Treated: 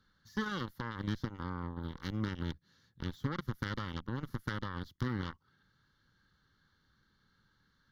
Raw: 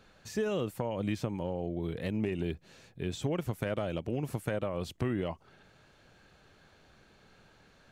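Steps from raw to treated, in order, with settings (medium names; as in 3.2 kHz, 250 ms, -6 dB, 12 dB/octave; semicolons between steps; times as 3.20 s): Chebyshev shaper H 3 -32 dB, 7 -15 dB, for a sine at -19 dBFS; peaking EQ 410 Hz -6.5 dB 0.66 oct; static phaser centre 2.5 kHz, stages 6; trim +1 dB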